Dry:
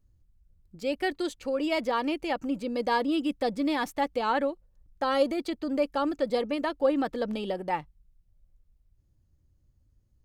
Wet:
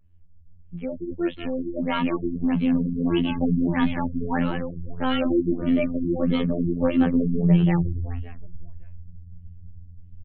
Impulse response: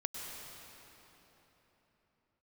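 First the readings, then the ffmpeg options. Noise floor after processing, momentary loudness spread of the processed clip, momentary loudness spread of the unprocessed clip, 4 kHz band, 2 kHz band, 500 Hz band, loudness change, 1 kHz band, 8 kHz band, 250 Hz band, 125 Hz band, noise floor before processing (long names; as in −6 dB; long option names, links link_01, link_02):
−46 dBFS, 12 LU, 6 LU, +0.5 dB, +0.5 dB, −0.5 dB, +5.0 dB, −3.0 dB, below −30 dB, +9.0 dB, can't be measured, −68 dBFS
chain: -filter_complex "[0:a]highshelf=frequency=4200:width_type=q:width=3:gain=-13.5,aecho=1:1:5.1:0.47,asubboost=boost=10:cutoff=210,asplit=7[link_01][link_02][link_03][link_04][link_05][link_06][link_07];[link_02]adelay=187,afreqshift=-38,volume=-8dB[link_08];[link_03]adelay=374,afreqshift=-76,volume=-13.5dB[link_09];[link_04]adelay=561,afreqshift=-114,volume=-19dB[link_10];[link_05]adelay=748,afreqshift=-152,volume=-24.5dB[link_11];[link_06]adelay=935,afreqshift=-190,volume=-30.1dB[link_12];[link_07]adelay=1122,afreqshift=-228,volume=-35.6dB[link_13];[link_01][link_08][link_09][link_10][link_11][link_12][link_13]amix=inputs=7:normalize=0,afftfilt=real='hypot(re,im)*cos(PI*b)':imag='0':win_size=2048:overlap=0.75,acrossover=split=170|1400[link_14][link_15][link_16];[link_14]acontrast=32[link_17];[link_17][link_15][link_16]amix=inputs=3:normalize=0,afftfilt=real='re*lt(b*sr/1024,400*pow(4400/400,0.5+0.5*sin(2*PI*1.6*pts/sr)))':imag='im*lt(b*sr/1024,400*pow(4400/400,0.5+0.5*sin(2*PI*1.6*pts/sr)))':win_size=1024:overlap=0.75,volume=4dB"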